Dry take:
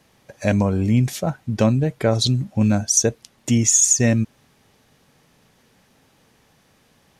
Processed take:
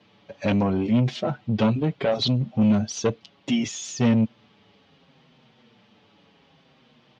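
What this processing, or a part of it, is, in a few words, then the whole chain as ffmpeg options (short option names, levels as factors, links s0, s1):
barber-pole flanger into a guitar amplifier: -filter_complex "[0:a]asplit=2[s0][s1];[s1]adelay=6.4,afreqshift=-0.68[s2];[s0][s2]amix=inputs=2:normalize=1,asoftclip=type=tanh:threshold=0.106,highpass=110,equalizer=f=220:t=q:w=4:g=3,equalizer=f=1700:t=q:w=4:g=-5,equalizer=f=3100:t=q:w=4:g=5,lowpass=f=4300:w=0.5412,lowpass=f=4300:w=1.3066,volume=1.58"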